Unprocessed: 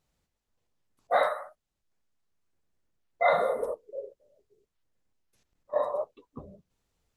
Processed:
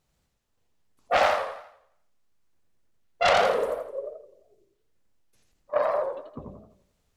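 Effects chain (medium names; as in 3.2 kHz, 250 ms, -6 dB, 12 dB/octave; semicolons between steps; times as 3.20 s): self-modulated delay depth 0.28 ms; modulated delay 86 ms, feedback 43%, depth 167 cents, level -4 dB; trim +3 dB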